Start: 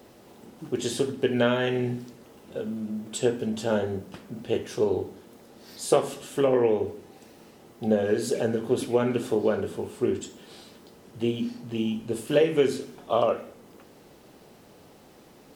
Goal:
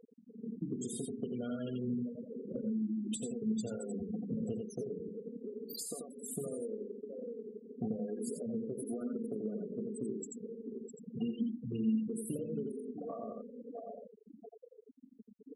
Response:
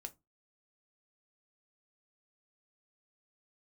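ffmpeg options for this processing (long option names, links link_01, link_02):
-filter_complex "[0:a]acompressor=threshold=-37dB:ratio=4,superequalizer=9b=0.631:11b=0.355,flanger=delay=1.9:depth=8.5:regen=-54:speed=0.34:shape=triangular,equalizer=frequency=11000:width=0.89:gain=14.5,bandreject=frequency=50:width_type=h:width=6,bandreject=frequency=100:width_type=h:width=6,bandreject=frequency=150:width_type=h:width=6,aecho=1:1:4.3:0.44,asplit=2[link_01][link_02];[link_02]aecho=0:1:657|1314|1971|2628:0.251|0.0904|0.0326|0.0117[link_03];[link_01][link_03]amix=inputs=2:normalize=0,afftfilt=real='re*gte(hypot(re,im),0.0158)':imag='im*gte(hypot(re,im),0.0158)':win_size=1024:overlap=0.75,asplit=2[link_04][link_05];[link_05]aecho=0:1:86:0.562[link_06];[link_04][link_06]amix=inputs=2:normalize=0,acrossover=split=240[link_07][link_08];[link_08]acompressor=threshold=-51dB:ratio=10[link_09];[link_07][link_09]amix=inputs=2:normalize=0,volume=9.5dB"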